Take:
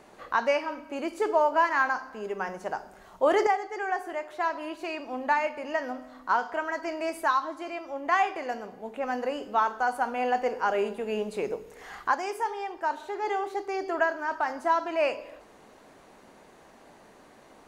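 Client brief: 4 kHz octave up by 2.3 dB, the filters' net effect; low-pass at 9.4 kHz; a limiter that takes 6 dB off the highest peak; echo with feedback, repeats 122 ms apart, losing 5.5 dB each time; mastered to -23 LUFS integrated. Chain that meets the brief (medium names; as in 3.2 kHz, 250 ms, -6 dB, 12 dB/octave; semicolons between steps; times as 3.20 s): low-pass 9.4 kHz; peaking EQ 4 kHz +3.5 dB; peak limiter -18 dBFS; feedback delay 122 ms, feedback 53%, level -5.5 dB; trim +6 dB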